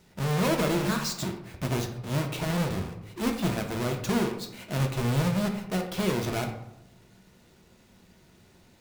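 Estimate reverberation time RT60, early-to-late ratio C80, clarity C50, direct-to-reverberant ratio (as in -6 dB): 0.85 s, 10.5 dB, 7.5 dB, 2.5 dB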